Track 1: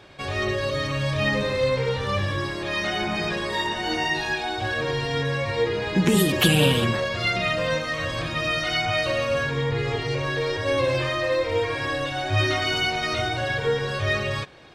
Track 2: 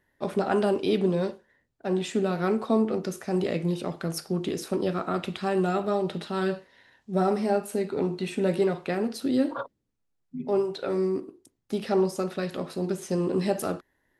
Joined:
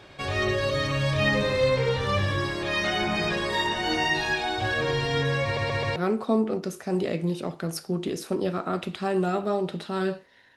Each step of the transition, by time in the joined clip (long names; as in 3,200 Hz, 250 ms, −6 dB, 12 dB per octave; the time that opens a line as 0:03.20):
track 1
0:05.44: stutter in place 0.13 s, 4 plays
0:05.96: continue with track 2 from 0:02.37